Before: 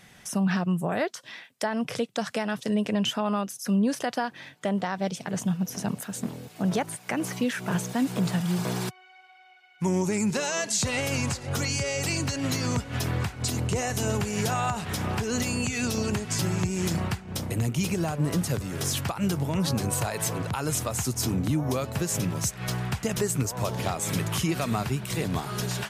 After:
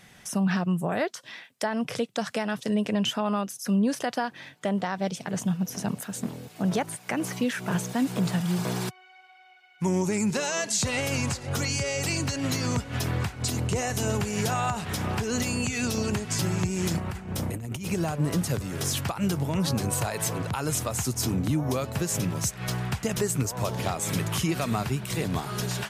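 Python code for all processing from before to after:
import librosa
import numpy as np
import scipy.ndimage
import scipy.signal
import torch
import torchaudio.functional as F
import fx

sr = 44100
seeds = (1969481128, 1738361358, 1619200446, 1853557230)

y = fx.chain(x, sr, fx.peak_eq(hz=4400.0, db=-5.0, octaves=1.4),
    fx.over_compress(threshold_db=-32.0, ratio=-1.0),
    fx.clip_hard(threshold_db=-21.5), at=(16.97, 17.87))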